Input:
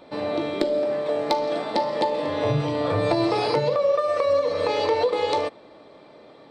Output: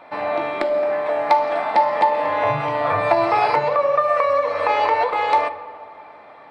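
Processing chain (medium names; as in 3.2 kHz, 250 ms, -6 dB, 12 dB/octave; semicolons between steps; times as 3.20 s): high-order bell 1.3 kHz +15 dB 2.3 oct; on a send: reverberation RT60 2.0 s, pre-delay 3 ms, DRR 12 dB; on the sum: trim -5.5 dB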